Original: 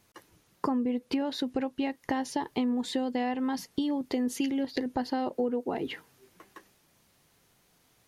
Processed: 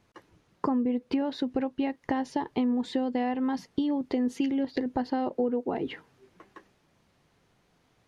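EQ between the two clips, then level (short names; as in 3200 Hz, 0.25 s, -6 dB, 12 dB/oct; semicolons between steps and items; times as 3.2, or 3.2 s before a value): tape spacing loss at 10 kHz 20 dB; high shelf 8800 Hz +6.5 dB; +2.5 dB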